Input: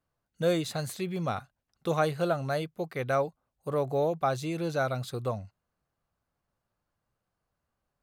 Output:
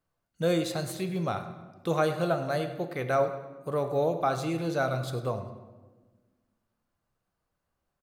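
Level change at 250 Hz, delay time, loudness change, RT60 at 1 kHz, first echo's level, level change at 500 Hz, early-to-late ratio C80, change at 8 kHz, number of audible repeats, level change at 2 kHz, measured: +1.5 dB, 0.101 s, +1.0 dB, 1.2 s, -16.0 dB, +1.0 dB, 10.0 dB, +0.5 dB, 2, +1.0 dB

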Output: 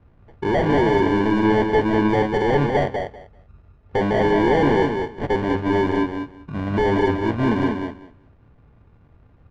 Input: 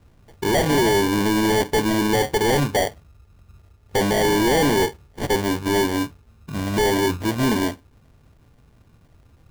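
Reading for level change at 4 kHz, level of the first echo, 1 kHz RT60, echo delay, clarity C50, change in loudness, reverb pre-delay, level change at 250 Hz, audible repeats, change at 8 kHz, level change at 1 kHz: -8.5 dB, -5.0 dB, none, 0.195 s, none, +0.5 dB, none, +1.5 dB, 2, under -20 dB, +1.5 dB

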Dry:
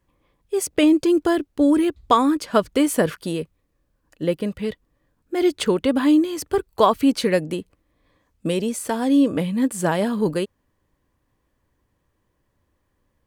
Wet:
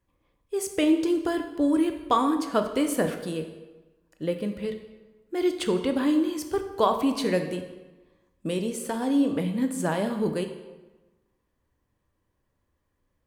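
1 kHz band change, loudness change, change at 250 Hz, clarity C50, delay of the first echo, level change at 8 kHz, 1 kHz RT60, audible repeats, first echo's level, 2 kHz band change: -5.5 dB, -5.5 dB, -5.5 dB, 8.5 dB, none, -6.0 dB, 1.2 s, none, none, -5.5 dB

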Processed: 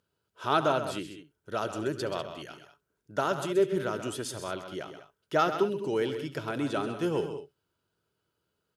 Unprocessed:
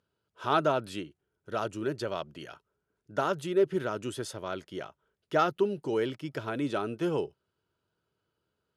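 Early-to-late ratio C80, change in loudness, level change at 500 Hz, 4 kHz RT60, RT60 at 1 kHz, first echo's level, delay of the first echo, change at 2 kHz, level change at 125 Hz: none, +0.5 dB, +0.5 dB, none, none, -19.5 dB, 70 ms, +1.5 dB, +0.5 dB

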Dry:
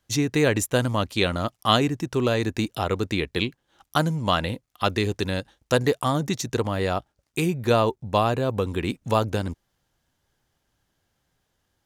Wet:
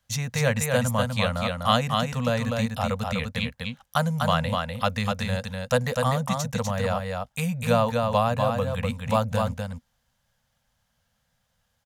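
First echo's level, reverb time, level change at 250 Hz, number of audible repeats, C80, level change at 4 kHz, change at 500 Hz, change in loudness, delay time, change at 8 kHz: -4.0 dB, none, -2.5 dB, 1, none, -2.0 dB, -1.5 dB, -1.0 dB, 0.248 s, 0.0 dB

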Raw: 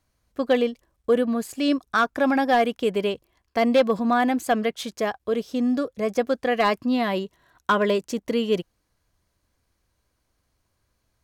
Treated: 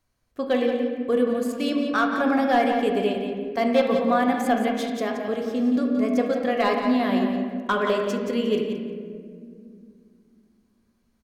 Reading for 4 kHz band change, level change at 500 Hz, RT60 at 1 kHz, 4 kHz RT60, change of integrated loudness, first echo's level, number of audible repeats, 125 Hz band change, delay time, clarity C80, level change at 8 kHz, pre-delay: -1.5 dB, 0.0 dB, 1.6 s, 1.1 s, 0.0 dB, -8.0 dB, 1, n/a, 0.175 s, 3.5 dB, -3.0 dB, 3 ms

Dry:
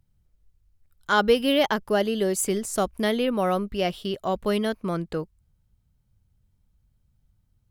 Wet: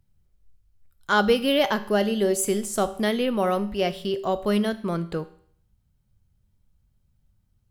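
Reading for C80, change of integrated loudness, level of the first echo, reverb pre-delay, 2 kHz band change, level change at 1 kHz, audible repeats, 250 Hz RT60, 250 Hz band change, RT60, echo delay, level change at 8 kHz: 18.0 dB, +0.5 dB, none, 5 ms, +0.5 dB, 0.0 dB, none, 0.60 s, +1.5 dB, 0.60 s, none, +0.5 dB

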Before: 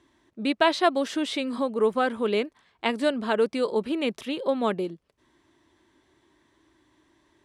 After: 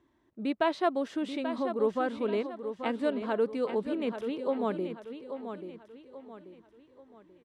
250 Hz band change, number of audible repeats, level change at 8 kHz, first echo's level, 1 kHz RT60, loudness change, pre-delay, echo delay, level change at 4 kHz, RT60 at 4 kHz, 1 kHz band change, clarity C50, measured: -4.0 dB, 4, under -10 dB, -9.0 dB, none, -5.5 dB, none, 0.835 s, -12.5 dB, none, -6.0 dB, none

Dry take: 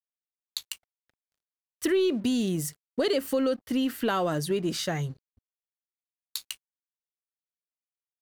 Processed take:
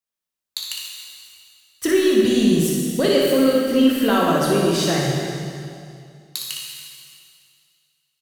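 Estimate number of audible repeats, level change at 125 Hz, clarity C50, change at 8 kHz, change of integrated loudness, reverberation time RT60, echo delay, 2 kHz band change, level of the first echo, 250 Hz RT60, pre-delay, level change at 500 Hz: 1, +9.5 dB, -2.0 dB, +10.0 dB, +9.5 dB, 2.4 s, 60 ms, +10.0 dB, -6.5 dB, 2.5 s, 8 ms, +9.5 dB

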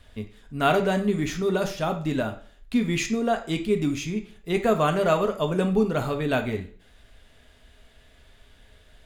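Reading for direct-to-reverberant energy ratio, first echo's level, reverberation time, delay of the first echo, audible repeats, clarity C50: 4.5 dB, none, 0.45 s, none, none, 11.0 dB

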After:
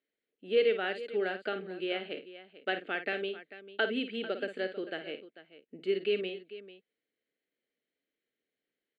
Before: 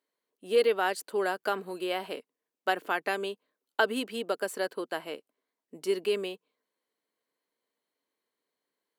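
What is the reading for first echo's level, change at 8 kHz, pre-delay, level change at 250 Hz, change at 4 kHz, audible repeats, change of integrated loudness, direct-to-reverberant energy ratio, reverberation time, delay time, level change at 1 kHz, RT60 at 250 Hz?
-10.0 dB, under -25 dB, none, -1.0 dB, -1.5 dB, 2, -3.0 dB, none, none, 53 ms, -9.0 dB, none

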